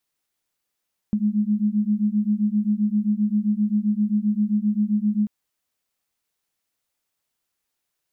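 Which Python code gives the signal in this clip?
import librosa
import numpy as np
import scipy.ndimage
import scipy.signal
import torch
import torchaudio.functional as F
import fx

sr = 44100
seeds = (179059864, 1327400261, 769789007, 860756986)

y = fx.two_tone_beats(sr, length_s=4.14, hz=206.0, beat_hz=7.6, level_db=-21.5)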